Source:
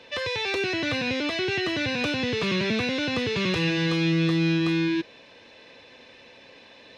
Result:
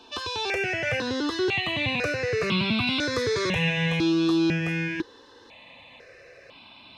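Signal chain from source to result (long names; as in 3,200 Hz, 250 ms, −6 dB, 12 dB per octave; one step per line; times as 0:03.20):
0:02.87–0:03.50: high-shelf EQ 3,900 Hz +7.5 dB
step-sequenced phaser 2 Hz 540–1,800 Hz
level +4 dB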